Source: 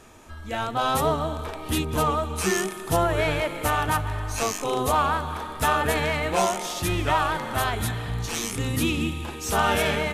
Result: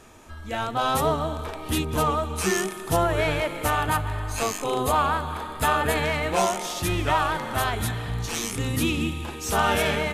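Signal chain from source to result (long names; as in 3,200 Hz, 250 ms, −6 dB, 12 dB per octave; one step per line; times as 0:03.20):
0:03.75–0:06.04: notch filter 5,700 Hz, Q 6.8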